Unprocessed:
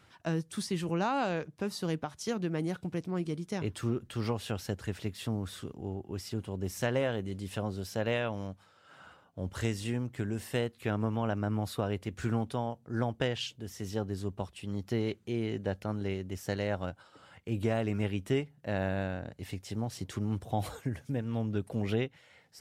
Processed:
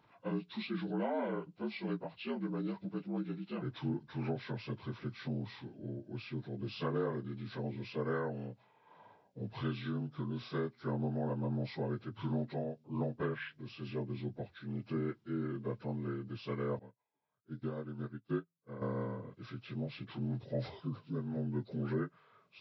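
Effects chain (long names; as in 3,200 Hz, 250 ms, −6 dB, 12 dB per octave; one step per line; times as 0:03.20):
partials spread apart or drawn together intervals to 76%
notch filter 1,800 Hz, Q 8.3
0:16.79–0:18.82: expander for the loud parts 2.5 to 1, over −44 dBFS
level −3.5 dB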